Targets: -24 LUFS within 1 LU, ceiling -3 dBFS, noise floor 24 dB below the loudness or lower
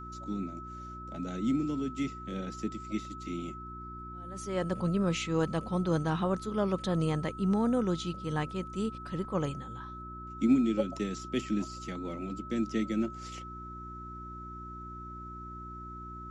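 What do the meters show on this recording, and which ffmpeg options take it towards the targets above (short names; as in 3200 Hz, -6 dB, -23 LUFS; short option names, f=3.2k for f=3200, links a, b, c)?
hum 60 Hz; harmonics up to 360 Hz; hum level -44 dBFS; steady tone 1300 Hz; tone level -43 dBFS; loudness -33.5 LUFS; peak -15.0 dBFS; loudness target -24.0 LUFS
-> -af "bandreject=f=60:t=h:w=4,bandreject=f=120:t=h:w=4,bandreject=f=180:t=h:w=4,bandreject=f=240:t=h:w=4,bandreject=f=300:t=h:w=4,bandreject=f=360:t=h:w=4"
-af "bandreject=f=1.3k:w=30"
-af "volume=9.5dB"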